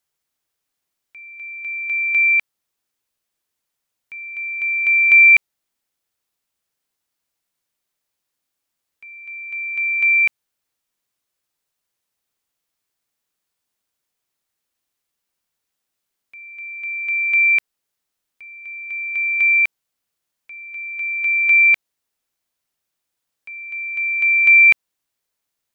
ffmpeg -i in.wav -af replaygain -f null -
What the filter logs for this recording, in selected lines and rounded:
track_gain = -3.9 dB
track_peak = 0.377